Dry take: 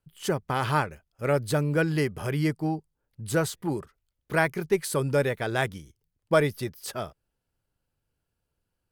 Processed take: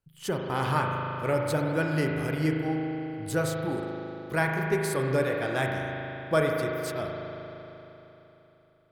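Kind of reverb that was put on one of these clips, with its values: spring tank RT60 3.5 s, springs 38 ms, chirp 65 ms, DRR 0 dB; gain -3.5 dB

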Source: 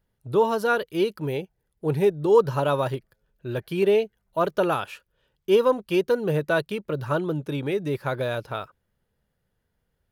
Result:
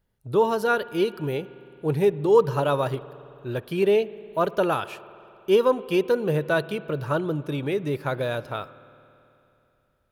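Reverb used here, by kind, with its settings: spring tank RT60 3 s, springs 54 ms, chirp 75 ms, DRR 17 dB

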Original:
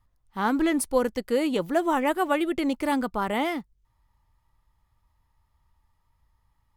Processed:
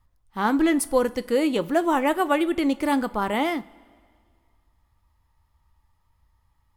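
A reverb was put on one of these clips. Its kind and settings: two-slope reverb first 0.28 s, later 2 s, from -18 dB, DRR 13 dB; gain +2 dB

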